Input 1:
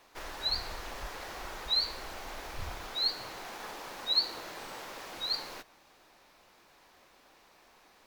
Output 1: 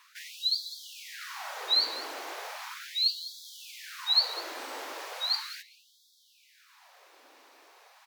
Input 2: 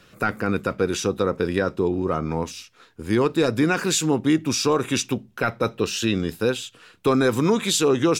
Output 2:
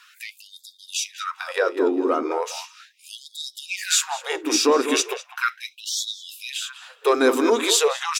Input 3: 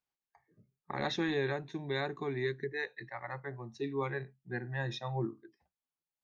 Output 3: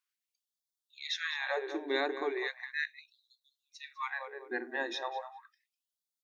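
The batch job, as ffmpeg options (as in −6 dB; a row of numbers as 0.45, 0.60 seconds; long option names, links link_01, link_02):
-filter_complex "[0:a]acontrast=90,bandreject=frequency=60:width_type=h:width=6,bandreject=frequency=120:width_type=h:width=6,bandreject=frequency=180:width_type=h:width=6,bandreject=frequency=240:width_type=h:width=6,bandreject=frequency=300:width_type=h:width=6,bandreject=frequency=360:width_type=h:width=6,bandreject=frequency=420:width_type=h:width=6,asplit=2[link_01][link_02];[link_02]adelay=201,lowpass=frequency=1900:poles=1,volume=-9dB,asplit=2[link_03][link_04];[link_04]adelay=201,lowpass=frequency=1900:poles=1,volume=0.3,asplit=2[link_05][link_06];[link_06]adelay=201,lowpass=frequency=1900:poles=1,volume=0.3[link_07];[link_01][link_03][link_05][link_07]amix=inputs=4:normalize=0,afftfilt=real='re*gte(b*sr/1024,220*pow(3300/220,0.5+0.5*sin(2*PI*0.37*pts/sr)))':imag='im*gte(b*sr/1024,220*pow(3300/220,0.5+0.5*sin(2*PI*0.37*pts/sr)))':win_size=1024:overlap=0.75,volume=-3.5dB"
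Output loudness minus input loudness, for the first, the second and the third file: +4.0, 0.0, +1.0 LU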